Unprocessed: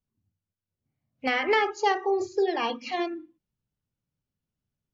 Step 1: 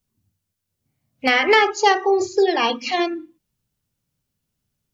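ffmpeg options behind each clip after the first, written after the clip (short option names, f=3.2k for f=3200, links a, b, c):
-af "highshelf=f=3.4k:g=7.5,volume=7.5dB"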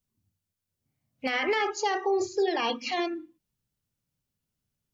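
-af "alimiter=limit=-11.5dB:level=0:latency=1:release=30,volume=-6.5dB"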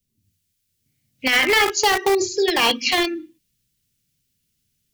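-filter_complex "[0:a]acrossover=split=260|530|1800[a][b][c][d];[c]acrusher=bits=4:mix=0:aa=0.000001[e];[d]dynaudnorm=f=170:g=3:m=7dB[f];[a][b][e][f]amix=inputs=4:normalize=0,volume=7.5dB"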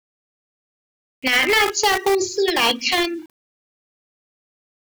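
-af "aeval=exprs='val(0)*gte(abs(val(0)),0.00631)':c=same"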